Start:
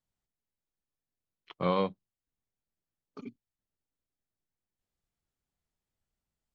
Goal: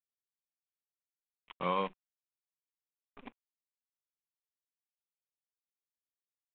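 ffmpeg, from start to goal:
-af "acrusher=bits=7:dc=4:mix=0:aa=0.000001,equalizer=f=100:t=o:w=0.67:g=-11,equalizer=f=1000:t=o:w=0.67:g=7,equalizer=f=2500:t=o:w=0.67:g=8,aresample=8000,aresample=44100,volume=0.447"

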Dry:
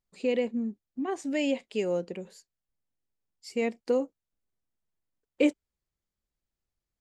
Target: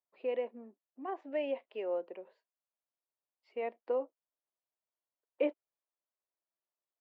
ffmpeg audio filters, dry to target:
-af "highpass=f=360:w=0.5412,highpass=f=360:w=1.3066,equalizer=f=430:t=q:w=4:g=-4,equalizer=f=640:t=q:w=4:g=6,equalizer=f=1000:t=q:w=4:g=5,equalizer=f=1600:t=q:w=4:g=-3,equalizer=f=2200:t=q:w=4:g=-5,lowpass=f=2500:w=0.5412,lowpass=f=2500:w=1.3066,volume=0.531"

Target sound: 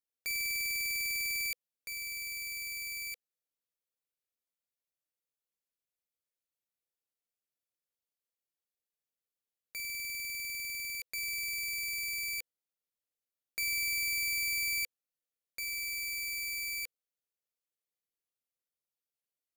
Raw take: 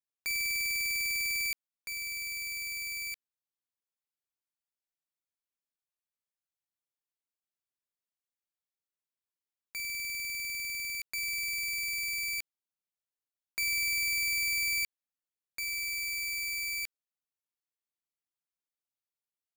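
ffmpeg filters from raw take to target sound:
-af "equalizer=f=500:t=o:w=0.33:g=9,equalizer=f=1000:t=o:w=0.33:g=-10,equalizer=f=1600:t=o:w=0.33:g=-3,equalizer=f=12500:t=o:w=0.33:g=5,volume=0.75"

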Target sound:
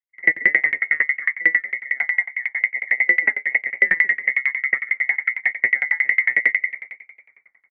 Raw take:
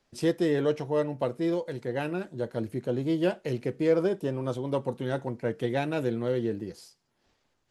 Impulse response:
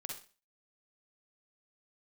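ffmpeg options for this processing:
-filter_complex "[0:a]highpass=f=92:w=0.5412,highpass=f=92:w=1.3066,agate=range=0.0224:threshold=0.00631:ratio=3:detection=peak,lowshelf=f=480:t=q:w=1.5:g=12,bandreject=f=570:w=12,areverse,acompressor=mode=upward:threshold=0.0631:ratio=2.5,areverse,afreqshift=490,asoftclip=type=hard:threshold=0.266,asplit=4[s0][s1][s2][s3];[s1]adelay=235,afreqshift=-57,volume=0.178[s4];[s2]adelay=470,afreqshift=-114,volume=0.0638[s5];[s3]adelay=705,afreqshift=-171,volume=0.0232[s6];[s0][s4][s5][s6]amix=inputs=4:normalize=0,asplit=2[s7][s8];[1:a]atrim=start_sample=2205[s9];[s8][s9]afir=irnorm=-1:irlink=0,volume=0.631[s10];[s7][s10]amix=inputs=2:normalize=0,lowpass=f=2400:t=q:w=0.5098,lowpass=f=2400:t=q:w=0.6013,lowpass=f=2400:t=q:w=0.9,lowpass=f=2400:t=q:w=2.563,afreqshift=-2800,aeval=exprs='val(0)*pow(10,-32*if(lt(mod(11*n/s,1),2*abs(11)/1000),1-mod(11*n/s,1)/(2*abs(11)/1000),(mod(11*n/s,1)-2*abs(11)/1000)/(1-2*abs(11)/1000))/20)':c=same,volume=1.5"

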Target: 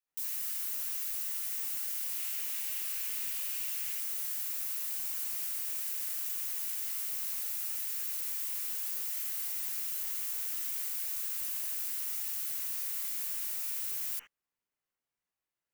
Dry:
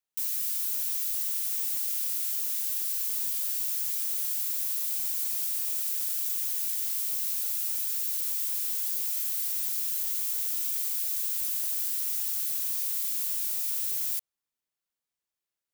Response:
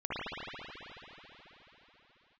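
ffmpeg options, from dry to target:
-filter_complex "[0:a]asettb=1/sr,asplit=3[s0][s1][s2];[s0]atrim=end=2.114[s3];[s1]atrim=start=2.11:end=3.93,asetpts=PTS-STARTPTS,afade=t=in:d=0.004:c=qsin,afade=t=out:st=1.816:d=0.004:c=qsin,equalizer=f=2600:w=1.7:g=6[s4];[s2]atrim=start=3.926[s5];[s3][s4]acrossfade=d=0.004:c1=hsin:c2=qsin[s6];[s6][s5]acrossfade=d=0.004:c1=qsin:c2=hsin,asplit=2[s7][s8];[s8]aeval=exprs='clip(val(0),-1,0.0473)':c=same,volume=0.266[s9];[s7][s9]amix=inputs=2:normalize=0[s10];[1:a]atrim=start_sample=2205,atrim=end_sample=3528[s11];[s10][s11]afir=irnorm=-1:irlink=0,volume=0.708"

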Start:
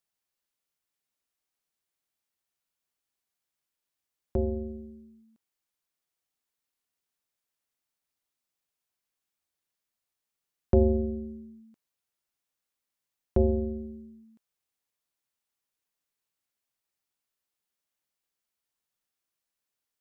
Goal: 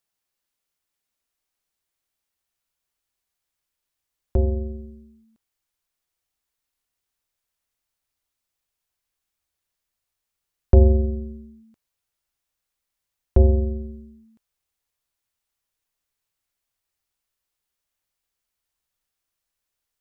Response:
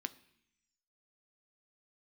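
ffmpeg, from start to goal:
-af "asubboost=boost=3.5:cutoff=94,volume=1.58"

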